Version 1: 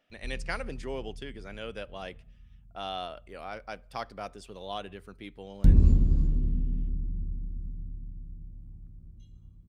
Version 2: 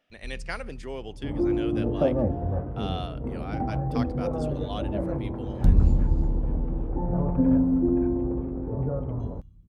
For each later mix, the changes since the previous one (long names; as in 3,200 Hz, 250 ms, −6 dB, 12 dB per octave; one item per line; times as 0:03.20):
second sound: unmuted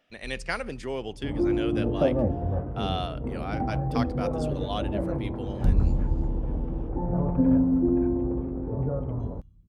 speech +4.0 dB
first sound −3.5 dB